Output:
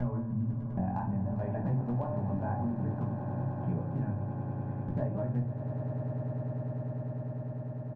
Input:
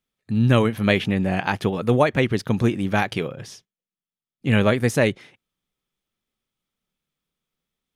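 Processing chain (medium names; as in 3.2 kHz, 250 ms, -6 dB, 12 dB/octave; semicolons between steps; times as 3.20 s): slices played last to first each 257 ms, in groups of 3; low-pass 1.1 kHz 24 dB/octave; comb 1.2 ms, depth 63%; de-hum 75.3 Hz, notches 35; compression 8:1, threshold -24 dBFS, peak gain reduction 13 dB; overload inside the chain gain 17.5 dB; chorus 0.58 Hz, delay 16 ms, depth 5.6 ms; on a send: echo with a slow build-up 100 ms, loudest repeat 8, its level -16 dB; on the sum: simulated room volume 230 m³, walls furnished, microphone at 1.3 m; three bands compressed up and down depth 70%; trim -6 dB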